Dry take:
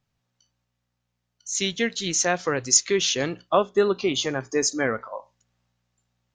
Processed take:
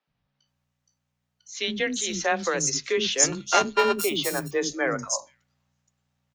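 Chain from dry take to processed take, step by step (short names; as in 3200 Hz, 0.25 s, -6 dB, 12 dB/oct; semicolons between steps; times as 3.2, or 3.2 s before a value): 3.32–4.04 sample sorter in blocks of 32 samples; frequency shift +20 Hz; three bands offset in time mids, lows, highs 70/470 ms, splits 320/5000 Hz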